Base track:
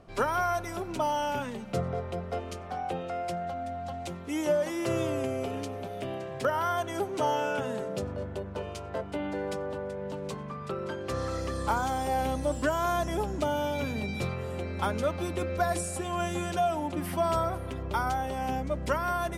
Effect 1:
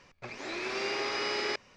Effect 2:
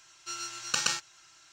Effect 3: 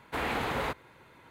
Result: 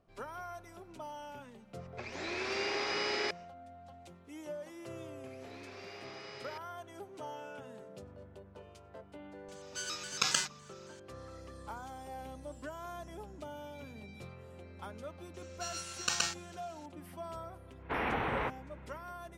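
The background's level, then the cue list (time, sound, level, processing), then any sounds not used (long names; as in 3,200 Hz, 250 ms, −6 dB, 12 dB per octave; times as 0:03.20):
base track −16.5 dB
0:01.75: mix in 1 −2 dB, fades 0.10 s + notch filter 1,200 Hz, Q 20
0:05.02: mix in 1 −16.5 dB
0:09.48: mix in 2 −2 dB + pitch modulation by a square or saw wave square 3.6 Hz, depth 160 cents
0:15.34: mix in 2 −4 dB
0:17.77: mix in 3 −2 dB, fades 0.10 s + low-pass filter 2,900 Hz 24 dB per octave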